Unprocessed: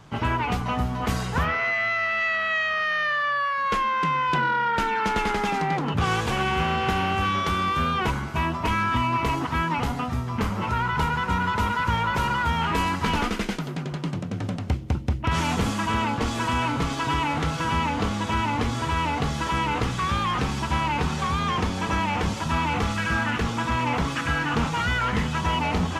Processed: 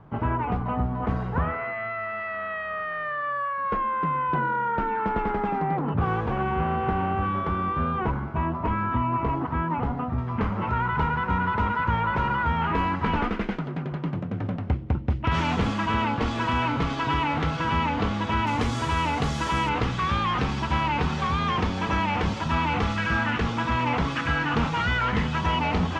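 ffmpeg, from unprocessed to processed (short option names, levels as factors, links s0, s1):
-af "asetnsamples=n=441:p=0,asendcmd='10.18 lowpass f 2000;15.1 lowpass f 3700;18.47 lowpass f 9700;19.69 lowpass f 4400',lowpass=1200"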